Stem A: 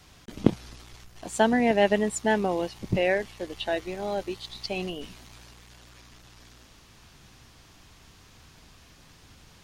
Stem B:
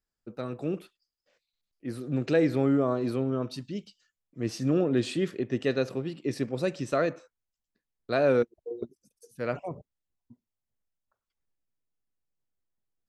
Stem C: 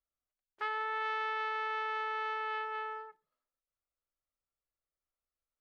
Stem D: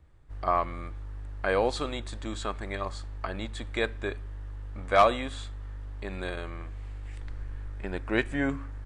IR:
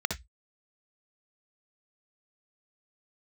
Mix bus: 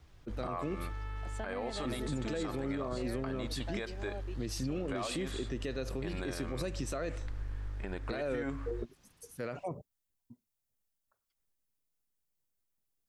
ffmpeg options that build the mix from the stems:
-filter_complex "[0:a]acompressor=threshold=0.0562:ratio=6,highshelf=f=7100:g=-9.5,volume=0.224[s0];[1:a]highshelf=f=6500:g=11,acompressor=threshold=0.0398:ratio=3,volume=0.891[s1];[2:a]volume=0.168[s2];[3:a]acompressor=threshold=0.0316:ratio=6,volume=0.891[s3];[s0][s1][s2][s3]amix=inputs=4:normalize=0,alimiter=level_in=1.41:limit=0.0631:level=0:latency=1:release=76,volume=0.708"

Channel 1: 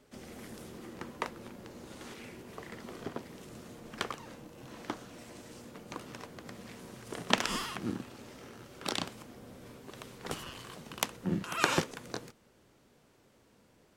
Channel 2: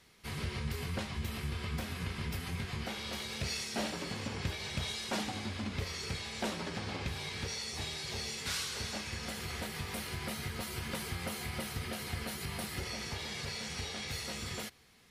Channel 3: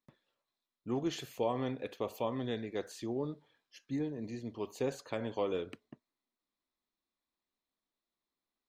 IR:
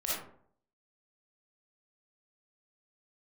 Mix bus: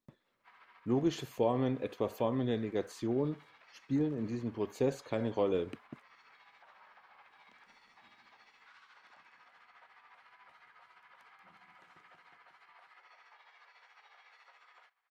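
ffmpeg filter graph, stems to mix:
-filter_complex "[0:a]volume=0.106,asplit=2[s0][s1];[s1]volume=0.0708[s2];[1:a]tremolo=f=14:d=0.52,lowpass=1400,adelay=200,volume=0.631[s3];[2:a]volume=1.26,asplit=2[s4][s5];[s5]apad=whole_len=616057[s6];[s0][s6]sidechaingate=range=0.0224:threshold=0.00141:ratio=16:detection=peak[s7];[s7][s3]amix=inputs=2:normalize=0,highpass=f=950:w=0.5412,highpass=f=950:w=1.3066,alimiter=level_in=15.8:limit=0.0631:level=0:latency=1:release=72,volume=0.0631,volume=1[s8];[s2]aecho=0:1:181|362|543|724|905|1086|1267|1448|1629:1|0.57|0.325|0.185|0.106|0.0602|0.0343|0.0195|0.0111[s9];[s4][s8][s9]amix=inputs=3:normalize=0,tiltshelf=f=710:g=3.5"

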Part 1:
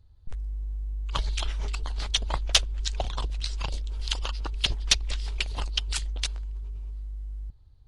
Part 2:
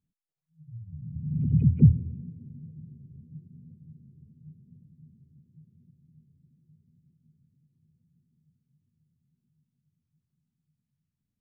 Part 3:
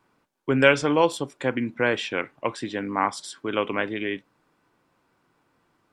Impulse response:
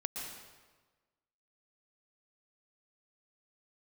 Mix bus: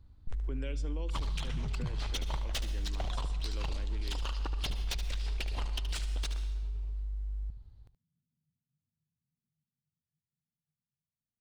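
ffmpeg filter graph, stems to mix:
-filter_complex "[0:a]volume=17.8,asoftclip=hard,volume=0.0562,highshelf=f=5600:g=-6.5,volume=0.668,asplit=3[s0][s1][s2];[s1]volume=0.398[s3];[s2]volume=0.376[s4];[1:a]volume=0.168[s5];[2:a]acrossover=split=460|3000[s6][s7][s8];[s7]acompressor=threshold=0.0158:ratio=6[s9];[s6][s9][s8]amix=inputs=3:normalize=0,aeval=exprs='val(0)+0.00398*(sin(2*PI*60*n/s)+sin(2*PI*2*60*n/s)/2+sin(2*PI*3*60*n/s)/3+sin(2*PI*4*60*n/s)/4+sin(2*PI*5*60*n/s)/5)':c=same,volume=0.133,asplit=3[s10][s11][s12];[s11]volume=0.0841[s13];[s12]volume=0.0944[s14];[3:a]atrim=start_sample=2205[s15];[s3][s13]amix=inputs=2:normalize=0[s16];[s16][s15]afir=irnorm=-1:irlink=0[s17];[s4][s14]amix=inputs=2:normalize=0,aecho=0:1:74:1[s18];[s0][s5][s10][s17][s18]amix=inputs=5:normalize=0,alimiter=level_in=1.41:limit=0.0631:level=0:latency=1:release=82,volume=0.708"

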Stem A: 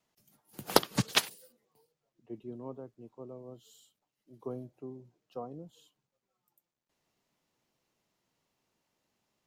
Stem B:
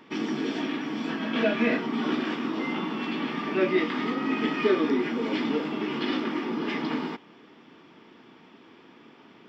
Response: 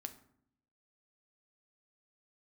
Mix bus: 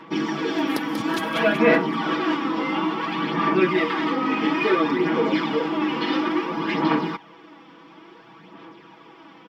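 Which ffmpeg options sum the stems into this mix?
-filter_complex "[0:a]volume=0.355,asplit=2[s0][s1];[s1]volume=0.447[s2];[1:a]aecho=1:1:6.1:0.96,aphaser=in_gain=1:out_gain=1:delay=4:decay=0.43:speed=0.58:type=sinusoidal,equalizer=f=990:w=1.6:g=6.5,volume=1.06[s3];[s2]aecho=0:1:188|376|564|752|940|1128|1316|1504:1|0.54|0.292|0.157|0.085|0.0459|0.0248|0.0134[s4];[s0][s3][s4]amix=inputs=3:normalize=0"

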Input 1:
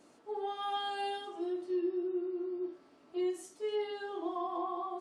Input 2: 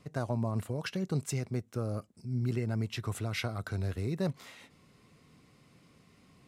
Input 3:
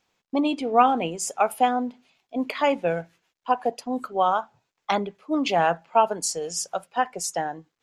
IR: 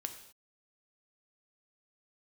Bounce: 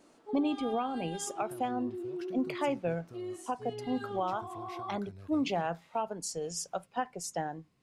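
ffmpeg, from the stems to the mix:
-filter_complex "[0:a]alimiter=level_in=2.99:limit=0.0631:level=0:latency=1:release=26,volume=0.335,volume=1[s0];[1:a]acompressor=threshold=0.0224:ratio=6,adelay=1350,volume=0.211[s1];[2:a]lowshelf=f=260:g=12,volume=0.376[s2];[s0][s2]amix=inputs=2:normalize=0,alimiter=limit=0.0841:level=0:latency=1:release=484,volume=1[s3];[s1][s3]amix=inputs=2:normalize=0"

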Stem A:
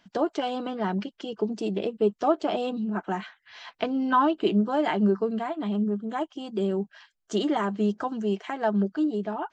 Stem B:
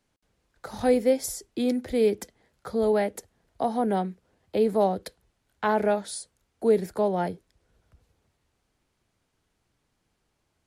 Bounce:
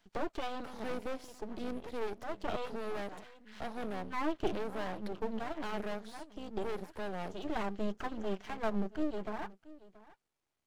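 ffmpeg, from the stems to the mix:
-filter_complex "[0:a]volume=0.596,asplit=2[s0][s1];[s1]volume=0.112[s2];[1:a]lowshelf=f=140:g=-10.5,acontrast=33,volume=7.94,asoftclip=hard,volume=0.126,volume=0.237,asplit=2[s3][s4];[s4]apad=whole_len=420140[s5];[s0][s5]sidechaincompress=threshold=0.00355:ratio=6:attack=8.2:release=262[s6];[s2]aecho=0:1:679:1[s7];[s6][s3][s7]amix=inputs=3:normalize=0,acrossover=split=4300[s8][s9];[s9]acompressor=threshold=0.001:ratio=4:attack=1:release=60[s10];[s8][s10]amix=inputs=2:normalize=0,aeval=exprs='max(val(0),0)':c=same"

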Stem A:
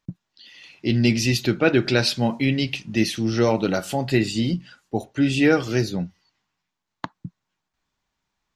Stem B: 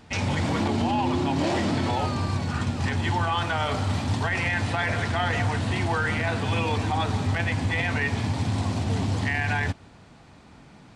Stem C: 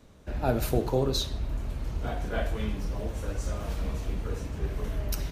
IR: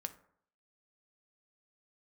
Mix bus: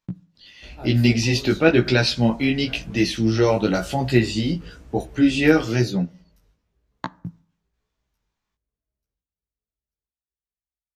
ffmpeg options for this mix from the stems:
-filter_complex "[0:a]acrossover=split=6600[s0][s1];[s1]acompressor=threshold=0.00708:ratio=4:attack=1:release=60[s2];[s0][s2]amix=inputs=2:normalize=0,agate=range=0.501:threshold=0.00447:ratio=16:detection=peak,volume=1.19,asplit=2[s3][s4];[s4]volume=0.531[s5];[2:a]adelay=350,volume=0.398,asplit=2[s6][s7];[s7]volume=0.0841[s8];[3:a]atrim=start_sample=2205[s9];[s5][s9]afir=irnorm=-1:irlink=0[s10];[s8]aecho=0:1:888|1776|2664|3552|4440|5328:1|0.4|0.16|0.064|0.0256|0.0102[s11];[s3][s6][s10][s11]amix=inputs=4:normalize=0,flanger=delay=15.5:depth=3.9:speed=1"

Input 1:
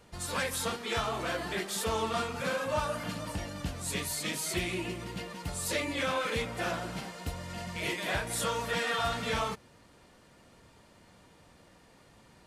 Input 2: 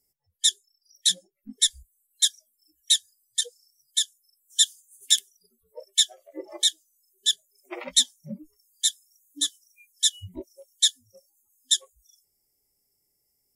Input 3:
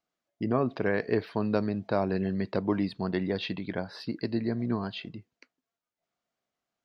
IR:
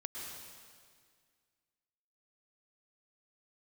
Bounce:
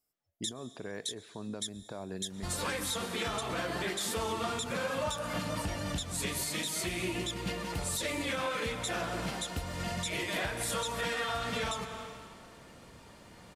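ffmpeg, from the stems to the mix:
-filter_complex "[0:a]alimiter=limit=0.0631:level=0:latency=1:release=454,adelay=2300,volume=1.33,asplit=2[s0][s1];[s1]volume=0.501[s2];[1:a]volume=0.282,asplit=2[s3][s4];[s4]volume=0.126[s5];[2:a]alimiter=limit=0.075:level=0:latency=1:release=261,volume=0.422,asplit=2[s6][s7];[s7]volume=0.0794[s8];[3:a]atrim=start_sample=2205[s9];[s2][s5][s8]amix=inputs=3:normalize=0[s10];[s10][s9]afir=irnorm=-1:irlink=0[s11];[s0][s3][s6][s11]amix=inputs=4:normalize=0,alimiter=level_in=1.06:limit=0.0631:level=0:latency=1:release=241,volume=0.944"

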